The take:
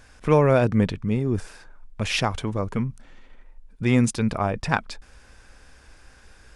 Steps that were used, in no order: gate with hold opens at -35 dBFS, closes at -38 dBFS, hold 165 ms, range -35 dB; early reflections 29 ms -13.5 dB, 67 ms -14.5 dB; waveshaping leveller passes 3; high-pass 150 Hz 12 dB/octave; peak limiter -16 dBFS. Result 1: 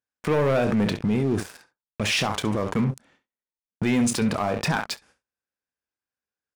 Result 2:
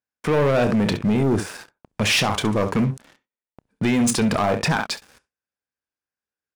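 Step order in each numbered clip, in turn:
high-pass > gate with hold > early reflections > waveshaping leveller > peak limiter; gate with hold > early reflections > peak limiter > high-pass > waveshaping leveller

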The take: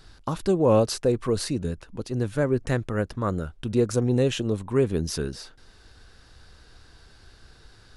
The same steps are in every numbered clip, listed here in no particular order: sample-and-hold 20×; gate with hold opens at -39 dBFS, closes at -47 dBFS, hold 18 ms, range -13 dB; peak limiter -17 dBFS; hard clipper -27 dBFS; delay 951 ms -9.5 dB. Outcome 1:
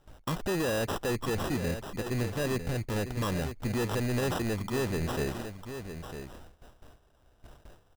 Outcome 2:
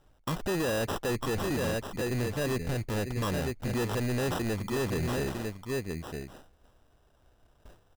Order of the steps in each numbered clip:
peak limiter > hard clipper > delay > gate with hold > sample-and-hold; sample-and-hold > gate with hold > delay > peak limiter > hard clipper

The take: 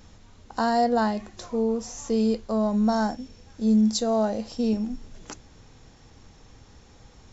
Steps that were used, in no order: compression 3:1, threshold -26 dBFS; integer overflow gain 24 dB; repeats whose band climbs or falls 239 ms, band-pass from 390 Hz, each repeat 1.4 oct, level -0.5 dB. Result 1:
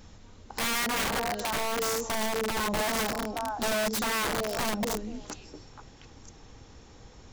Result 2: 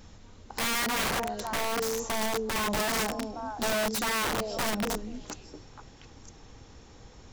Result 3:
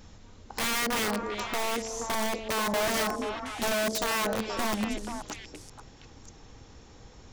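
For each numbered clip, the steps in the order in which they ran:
repeats whose band climbs or falls > compression > integer overflow; compression > repeats whose band climbs or falls > integer overflow; compression > integer overflow > repeats whose band climbs or falls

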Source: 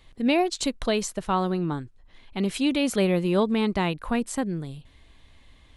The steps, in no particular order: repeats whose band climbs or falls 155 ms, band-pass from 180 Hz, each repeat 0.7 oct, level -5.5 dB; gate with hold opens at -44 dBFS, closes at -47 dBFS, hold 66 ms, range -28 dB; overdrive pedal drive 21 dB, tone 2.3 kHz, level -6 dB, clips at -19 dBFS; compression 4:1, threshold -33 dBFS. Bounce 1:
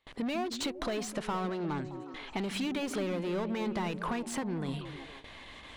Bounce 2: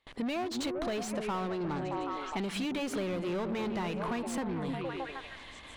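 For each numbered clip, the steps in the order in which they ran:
gate with hold > overdrive pedal > compression > repeats whose band climbs or falls; repeats whose band climbs or falls > gate with hold > overdrive pedal > compression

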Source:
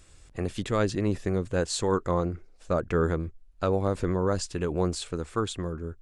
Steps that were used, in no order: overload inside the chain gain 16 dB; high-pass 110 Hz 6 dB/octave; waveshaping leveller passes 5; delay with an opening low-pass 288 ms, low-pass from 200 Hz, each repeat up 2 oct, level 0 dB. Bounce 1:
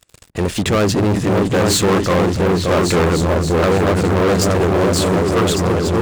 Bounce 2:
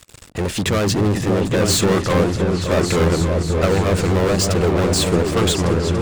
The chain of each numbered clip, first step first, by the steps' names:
overload inside the chain > delay with an opening low-pass > waveshaping leveller > high-pass; waveshaping leveller > high-pass > overload inside the chain > delay with an opening low-pass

